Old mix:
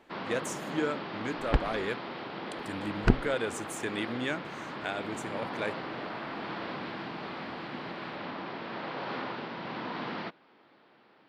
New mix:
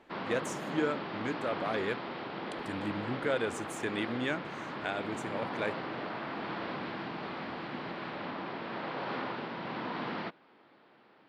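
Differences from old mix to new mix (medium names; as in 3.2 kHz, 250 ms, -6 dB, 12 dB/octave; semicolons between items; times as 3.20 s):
second sound: muted; master: add treble shelf 5.5 kHz -6.5 dB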